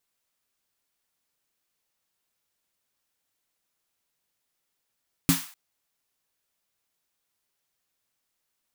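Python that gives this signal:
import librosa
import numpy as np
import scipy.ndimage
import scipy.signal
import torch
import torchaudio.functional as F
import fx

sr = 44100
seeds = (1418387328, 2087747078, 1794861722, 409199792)

y = fx.drum_snare(sr, seeds[0], length_s=0.25, hz=170.0, second_hz=270.0, noise_db=-5.5, noise_from_hz=830.0, decay_s=0.18, noise_decay_s=0.45)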